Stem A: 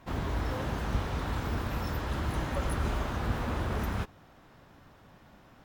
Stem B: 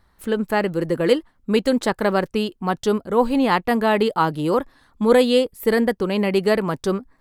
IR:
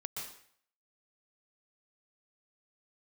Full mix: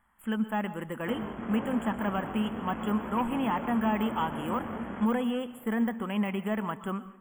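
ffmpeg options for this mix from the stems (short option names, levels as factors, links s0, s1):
-filter_complex "[0:a]asoftclip=type=hard:threshold=0.0178,flanger=delay=15.5:depth=7.3:speed=1,bandpass=f=700:t=q:w=0.57:csg=0,adelay=1000,volume=1.33,asplit=2[s0][s1];[s1]volume=0.562[s2];[1:a]deesser=0.85,lowshelf=f=630:t=q:w=1.5:g=-10,asoftclip=type=tanh:threshold=0.133,volume=0.422,asplit=2[s3][s4];[s4]volume=0.316[s5];[2:a]atrim=start_sample=2205[s6];[s2][s5]amix=inputs=2:normalize=0[s7];[s7][s6]afir=irnorm=-1:irlink=0[s8];[s0][s3][s8]amix=inputs=3:normalize=0,afftfilt=real='re*(1-between(b*sr/4096,3400,6900))':imag='im*(1-between(b*sr/4096,3400,6900))':win_size=4096:overlap=0.75,equalizer=f=220:t=o:w=0.48:g=13.5"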